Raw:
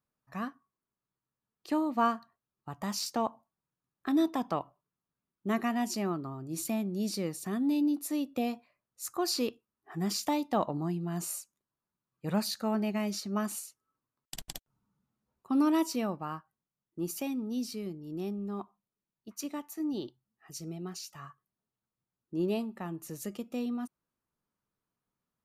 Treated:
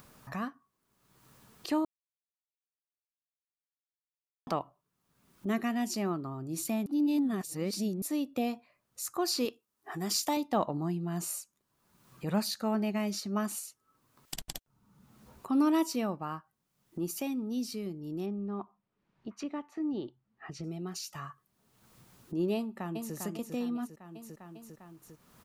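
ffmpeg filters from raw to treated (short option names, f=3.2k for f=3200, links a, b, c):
-filter_complex "[0:a]asettb=1/sr,asplit=3[a][b][c];[a]atrim=end=5.494[d];[b]atrim=start=5.49:end=5.94,asetpts=PTS-STARTPTS,afade=t=in:d=0.004:c=qsin,afade=t=out:st=0.446:d=0.004:c=qsin,equalizer=f=970:w=1.5:g=-6[e];[c]atrim=start=5.936[f];[d][e]acrossfade=d=0.004:c1=hsin:c2=qsin[g];[g][f]acrossfade=d=0.004:c1=qsin:c2=hsin,asettb=1/sr,asplit=3[h][i][j];[h]atrim=end=9.454[k];[i]atrim=start=9.45:end=10.37,asetpts=PTS-STARTPTS,afade=t=in:d=0.004:c=qsin,afade=t=out:st=0.916:d=0.004:c=qsin,bass=f=250:g=-7,treble=f=4k:g=5[l];[j]atrim=start=10.366[m];[k][l]acrossfade=d=0.004:c1=hsin:c2=qsin[n];[n][m]acrossfade=d=0.004:c1=qsin:c2=hsin,asplit=3[o][p][q];[o]afade=t=out:st=18.25:d=0.02[r];[p]lowpass=2.5k,afade=t=in:st=18.25:d=0.02,afade=t=out:st=20.63:d=0.02[s];[q]afade=t=in:st=20.63:d=0.02[t];[r][s][t]amix=inputs=3:normalize=0,asplit=2[u][v];[v]afade=t=in:st=22.55:d=0.01,afade=t=out:st=23.15:d=0.01,aecho=0:1:400|800|1200|1600|2000:0.530884|0.238898|0.107504|0.0483768|0.0217696[w];[u][w]amix=inputs=2:normalize=0,asplit=5[x][y][z][aa][ab];[x]atrim=end=1.85,asetpts=PTS-STARTPTS,afade=t=out:st=1.846:d=0.004:c=hsin[ac];[y]atrim=start=1.85:end=4.47,asetpts=PTS-STARTPTS,volume=0[ad];[z]atrim=start=4.47:end=6.862,asetpts=PTS-STARTPTS,afade=t=in:d=0.004:c=hsin[ae];[aa]atrim=start=6.858:end=8.022,asetpts=PTS-STARTPTS,areverse[af];[ab]atrim=start=8.018[ag];[ac][ad][ae]concat=n=3:v=0:a=1[ah];[ah][af]acrossfade=d=0.004:c1=hsin:c2=hsin[ai];[ai][ag]acrossfade=d=0.004:c1=hsin:c2=hsin,acompressor=mode=upward:threshold=-34dB:ratio=2.5"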